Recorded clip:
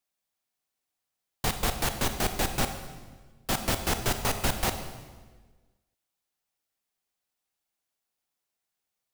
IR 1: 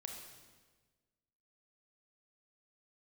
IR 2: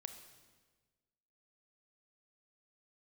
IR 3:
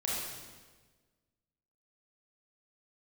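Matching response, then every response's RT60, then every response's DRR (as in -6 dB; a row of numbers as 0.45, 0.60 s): 2; 1.4, 1.4, 1.4 s; 1.5, 7.5, -6.0 dB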